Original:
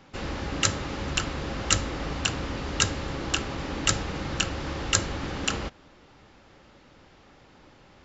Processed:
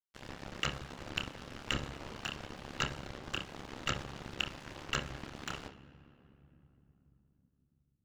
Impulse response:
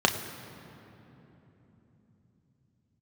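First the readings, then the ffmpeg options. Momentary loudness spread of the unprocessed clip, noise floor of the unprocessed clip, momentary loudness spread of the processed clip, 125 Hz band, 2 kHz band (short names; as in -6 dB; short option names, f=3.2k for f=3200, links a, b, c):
7 LU, -55 dBFS, 10 LU, -12.5 dB, -9.0 dB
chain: -filter_complex "[0:a]aeval=exprs='sgn(val(0))*max(abs(val(0))-0.0282,0)':c=same,acrossover=split=3700[a][b];[b]acompressor=threshold=-39dB:ratio=4:attack=1:release=60[c];[a][c]amix=inputs=2:normalize=0,asplit=2[d][e];[1:a]atrim=start_sample=2205,adelay=29[f];[e][f]afir=irnorm=-1:irlink=0,volume=-20dB[g];[d][g]amix=inputs=2:normalize=0,aeval=exprs='val(0)*sin(2*PI*35*n/s)':c=same,volume=-3.5dB"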